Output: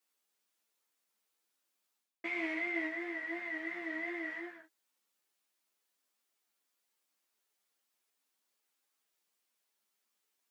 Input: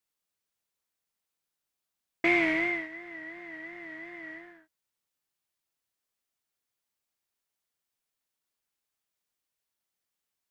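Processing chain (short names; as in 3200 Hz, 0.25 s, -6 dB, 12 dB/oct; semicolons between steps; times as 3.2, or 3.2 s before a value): HPF 220 Hz 24 dB/oct; reverse; compressor 12:1, threshold -38 dBFS, peak gain reduction 18 dB; reverse; ensemble effect; gain +7 dB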